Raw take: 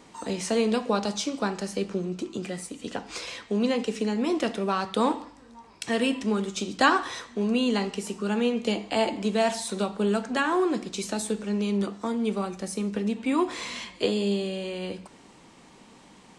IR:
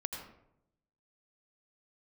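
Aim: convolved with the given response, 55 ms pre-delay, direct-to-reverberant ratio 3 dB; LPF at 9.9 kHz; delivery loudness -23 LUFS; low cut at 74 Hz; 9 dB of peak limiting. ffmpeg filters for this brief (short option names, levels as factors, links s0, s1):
-filter_complex "[0:a]highpass=74,lowpass=9900,alimiter=limit=0.141:level=0:latency=1,asplit=2[s0][s1];[1:a]atrim=start_sample=2205,adelay=55[s2];[s1][s2]afir=irnorm=-1:irlink=0,volume=0.631[s3];[s0][s3]amix=inputs=2:normalize=0,volume=1.58"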